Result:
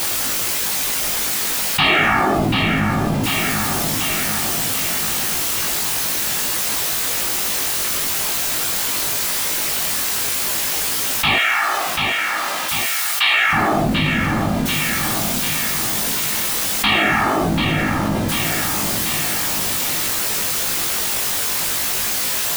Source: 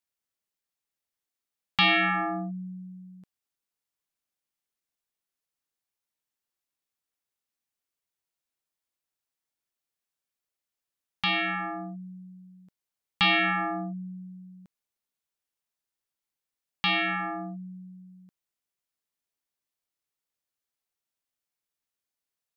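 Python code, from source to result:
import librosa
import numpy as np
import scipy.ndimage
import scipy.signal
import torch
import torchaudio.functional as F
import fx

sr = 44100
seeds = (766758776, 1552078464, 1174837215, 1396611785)

y = x + 0.5 * 10.0 ** (-33.5 / 20.0) * np.sign(x)
y = fx.whisperise(y, sr, seeds[0])
y = fx.highpass(y, sr, hz=1200.0, slope=12, at=(11.36, 13.53))
y = fx.doubler(y, sr, ms=19.0, db=-2.5)
y = fx.echo_feedback(y, sr, ms=739, feedback_pct=48, wet_db=-11.5)
y = fx.env_flatten(y, sr, amount_pct=70)
y = F.gain(torch.from_numpy(y), 2.5).numpy()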